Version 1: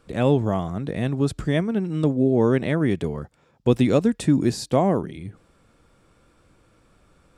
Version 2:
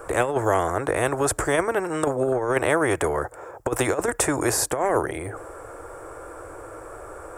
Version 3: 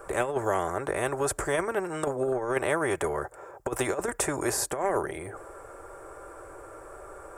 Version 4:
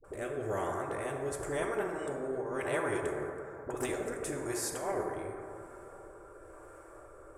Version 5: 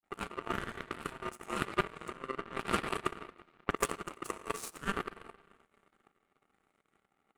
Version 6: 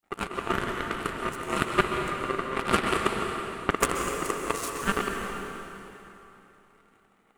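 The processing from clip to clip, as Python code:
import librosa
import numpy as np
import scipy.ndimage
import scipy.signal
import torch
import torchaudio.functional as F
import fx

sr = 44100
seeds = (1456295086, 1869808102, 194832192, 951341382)

y1 = fx.curve_eq(x, sr, hz=(110.0, 210.0, 320.0, 470.0, 1600.0, 2500.0, 4000.0, 8000.0), db=(0, -23, 7, 15, 9, -5, -14, 8))
y1 = fx.over_compress(y1, sr, threshold_db=-11.0, ratio=-0.5)
y1 = fx.spectral_comp(y1, sr, ratio=2.0)
y1 = F.gain(torch.from_numpy(y1), -7.5).numpy()
y2 = y1 + 0.32 * np.pad(y1, (int(5.1 * sr / 1000.0), 0))[:len(y1)]
y2 = F.gain(torch.from_numpy(y2), -6.0).numpy()
y3 = fx.dispersion(y2, sr, late='highs', ms=43.0, hz=490.0)
y3 = fx.rotary(y3, sr, hz=1.0)
y3 = fx.rev_plate(y3, sr, seeds[0], rt60_s=2.9, hf_ratio=0.3, predelay_ms=0, drr_db=2.0)
y3 = F.gain(torch.from_numpy(y3), -7.0).numpy()
y4 = fx.transient(y3, sr, attack_db=8, sustain_db=-5)
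y4 = y4 * np.sin(2.0 * np.pi * 790.0 * np.arange(len(y4)) / sr)
y4 = fx.power_curve(y4, sr, exponent=2.0)
y4 = F.gain(torch.from_numpy(y4), 7.5).numpy()
y5 = fx.rev_plate(y4, sr, seeds[1], rt60_s=3.2, hf_ratio=0.85, predelay_ms=115, drr_db=2.5)
y5 = F.gain(torch.from_numpy(y5), 7.5).numpy()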